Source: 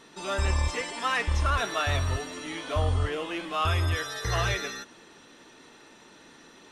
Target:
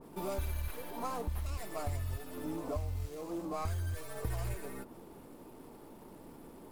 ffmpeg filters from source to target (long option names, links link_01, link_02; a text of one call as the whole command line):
ffmpeg -i in.wav -filter_complex "[0:a]asuperstop=centerf=2200:order=4:qfactor=0.64,lowshelf=frequency=130:gain=10,acrossover=split=1700[link_01][link_02];[link_01]acompressor=threshold=-36dB:ratio=10[link_03];[link_02]aeval=exprs='abs(val(0))':channel_layout=same[link_04];[link_03][link_04]amix=inputs=2:normalize=0,adynamicequalizer=threshold=0.00158:dfrequency=1900:dqfactor=0.7:tfrequency=1900:tqfactor=0.7:attack=5:release=100:ratio=0.375:range=3.5:mode=cutabove:tftype=highshelf,volume=1.5dB" out.wav